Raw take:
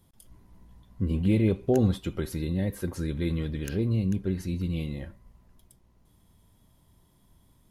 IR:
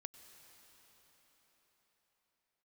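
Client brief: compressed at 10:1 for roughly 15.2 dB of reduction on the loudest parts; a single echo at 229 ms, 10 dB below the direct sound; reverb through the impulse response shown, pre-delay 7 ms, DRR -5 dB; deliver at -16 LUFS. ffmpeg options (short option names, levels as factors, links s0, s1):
-filter_complex "[0:a]acompressor=threshold=0.02:ratio=10,aecho=1:1:229:0.316,asplit=2[s0][s1];[1:a]atrim=start_sample=2205,adelay=7[s2];[s1][s2]afir=irnorm=-1:irlink=0,volume=3.35[s3];[s0][s3]amix=inputs=2:normalize=0,volume=7.5"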